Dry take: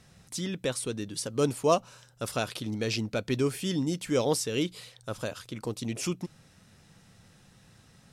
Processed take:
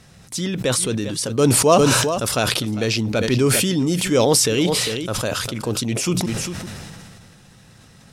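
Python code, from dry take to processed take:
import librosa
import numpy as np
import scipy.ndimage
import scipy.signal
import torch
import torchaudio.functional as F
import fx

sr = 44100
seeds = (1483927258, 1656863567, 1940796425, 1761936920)

p1 = x + fx.echo_single(x, sr, ms=401, db=-17.0, dry=0)
p2 = fx.sustainer(p1, sr, db_per_s=24.0)
y = p2 * 10.0 ** (8.5 / 20.0)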